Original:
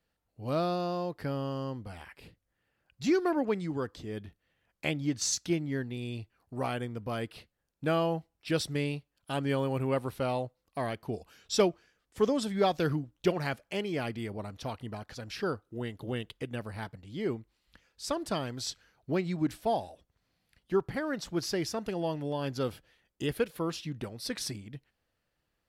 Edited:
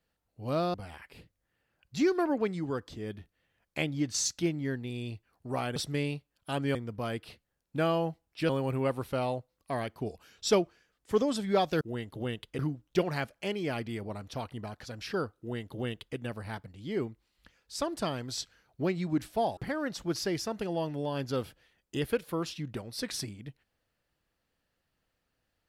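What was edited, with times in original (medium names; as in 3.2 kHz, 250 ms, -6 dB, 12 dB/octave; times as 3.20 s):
0.74–1.81 s: delete
8.57–9.56 s: move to 6.83 s
15.68–16.46 s: copy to 12.88 s
19.86–20.84 s: delete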